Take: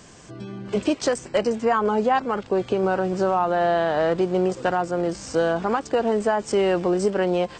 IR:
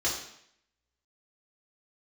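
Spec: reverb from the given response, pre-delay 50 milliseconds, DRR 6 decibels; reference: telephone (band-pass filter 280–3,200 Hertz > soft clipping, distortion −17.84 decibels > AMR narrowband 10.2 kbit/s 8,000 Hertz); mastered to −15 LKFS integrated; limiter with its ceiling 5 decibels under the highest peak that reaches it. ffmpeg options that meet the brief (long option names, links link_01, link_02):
-filter_complex "[0:a]alimiter=limit=-15dB:level=0:latency=1,asplit=2[link_01][link_02];[1:a]atrim=start_sample=2205,adelay=50[link_03];[link_02][link_03]afir=irnorm=-1:irlink=0,volume=-14.5dB[link_04];[link_01][link_04]amix=inputs=2:normalize=0,highpass=280,lowpass=3200,asoftclip=threshold=-17.5dB,volume=11.5dB" -ar 8000 -c:a libopencore_amrnb -b:a 10200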